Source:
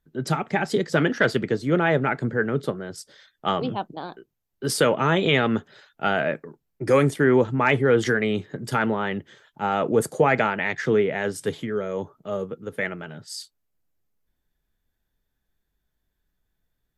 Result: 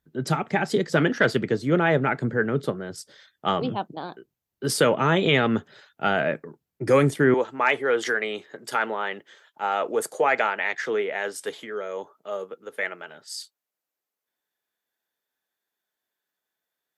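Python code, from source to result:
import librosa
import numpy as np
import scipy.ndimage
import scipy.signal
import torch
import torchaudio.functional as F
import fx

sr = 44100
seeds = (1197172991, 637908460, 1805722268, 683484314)

y = fx.highpass(x, sr, hz=fx.steps((0.0, 62.0), (7.34, 510.0)), slope=12)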